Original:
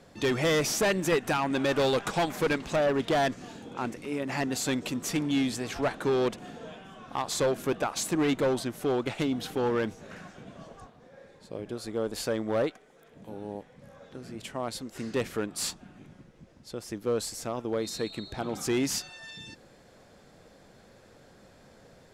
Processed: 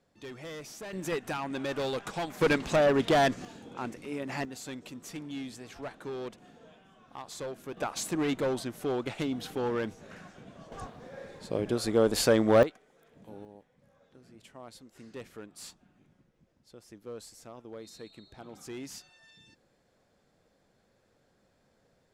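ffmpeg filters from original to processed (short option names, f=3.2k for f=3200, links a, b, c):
-af "asetnsamples=n=441:p=0,asendcmd='0.93 volume volume -7dB;2.41 volume volume 2dB;3.45 volume volume -4dB;4.45 volume volume -12dB;7.77 volume volume -3.5dB;10.72 volume volume 7dB;12.63 volume volume -5.5dB;13.45 volume volume -14dB',volume=-17dB"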